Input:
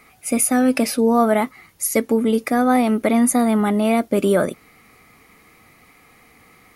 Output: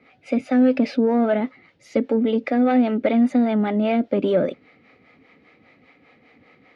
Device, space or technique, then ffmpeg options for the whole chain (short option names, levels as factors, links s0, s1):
guitar amplifier with harmonic tremolo: -filter_complex "[0:a]acrossover=split=420[s0][s1];[s0]aeval=exprs='val(0)*(1-0.7/2+0.7/2*cos(2*PI*5*n/s))':c=same[s2];[s1]aeval=exprs='val(0)*(1-0.7/2-0.7/2*cos(2*PI*5*n/s))':c=same[s3];[s2][s3]amix=inputs=2:normalize=0,asoftclip=type=tanh:threshold=0.211,highpass=99,equalizer=f=270:t=q:w=4:g=7,equalizer=f=540:t=q:w=4:g=8,equalizer=f=1100:t=q:w=4:g=-8,lowpass=f=3900:w=0.5412,lowpass=f=3900:w=1.3066"